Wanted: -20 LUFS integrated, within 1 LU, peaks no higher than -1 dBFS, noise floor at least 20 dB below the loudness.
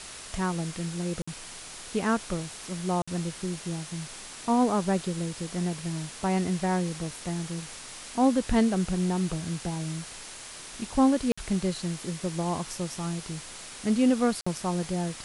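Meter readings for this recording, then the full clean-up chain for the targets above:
dropouts 4; longest dropout 55 ms; noise floor -43 dBFS; noise floor target -49 dBFS; loudness -29.0 LUFS; peak -11.5 dBFS; loudness target -20.0 LUFS
-> interpolate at 1.22/3.02/11.32/14.41, 55 ms; noise print and reduce 6 dB; gain +9 dB

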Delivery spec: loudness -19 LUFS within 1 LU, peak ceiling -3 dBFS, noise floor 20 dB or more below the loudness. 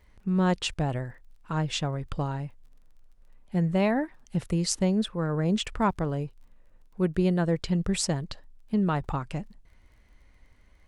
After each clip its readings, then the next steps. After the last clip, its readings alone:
ticks 26/s; loudness -28.0 LUFS; peak -10.5 dBFS; loudness target -19.0 LUFS
-> de-click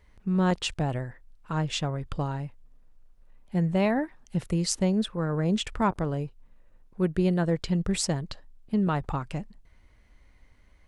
ticks 0/s; loudness -28.5 LUFS; peak -10.5 dBFS; loudness target -19.0 LUFS
-> gain +9.5 dB; limiter -3 dBFS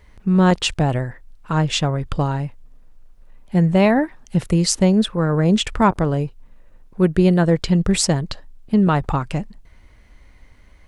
loudness -19.0 LUFS; peak -3.0 dBFS; noise floor -50 dBFS

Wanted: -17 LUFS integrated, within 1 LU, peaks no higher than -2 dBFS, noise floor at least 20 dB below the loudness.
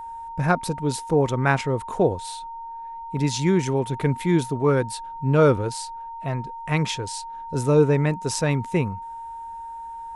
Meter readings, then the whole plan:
steady tone 920 Hz; tone level -33 dBFS; loudness -23.5 LUFS; peak -6.0 dBFS; loudness target -17.0 LUFS
-> notch 920 Hz, Q 30; gain +6.5 dB; limiter -2 dBFS

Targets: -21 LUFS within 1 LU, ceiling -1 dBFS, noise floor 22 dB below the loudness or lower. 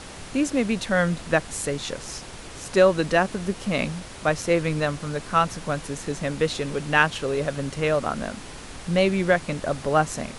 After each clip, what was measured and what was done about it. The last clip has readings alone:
noise floor -40 dBFS; noise floor target -47 dBFS; loudness -24.5 LUFS; peak -3.5 dBFS; loudness target -21.0 LUFS
-> noise print and reduce 7 dB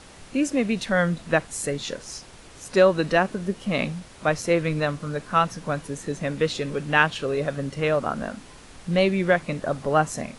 noise floor -47 dBFS; loudness -24.5 LUFS; peak -3.5 dBFS; loudness target -21.0 LUFS
-> gain +3.5 dB; limiter -1 dBFS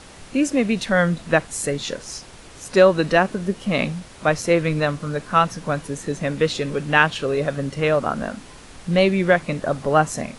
loudness -21.0 LUFS; peak -1.0 dBFS; noise floor -43 dBFS

